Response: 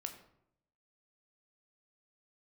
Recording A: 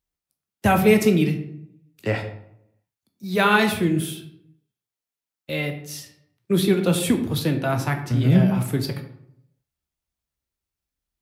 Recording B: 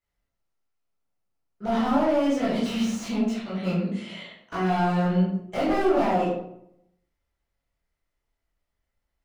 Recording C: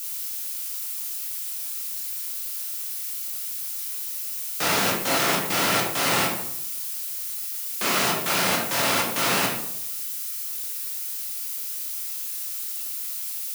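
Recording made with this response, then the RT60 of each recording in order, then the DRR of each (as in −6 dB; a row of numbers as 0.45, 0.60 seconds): A; 0.75, 0.75, 0.75 seconds; 5.0, −8.5, −3.5 decibels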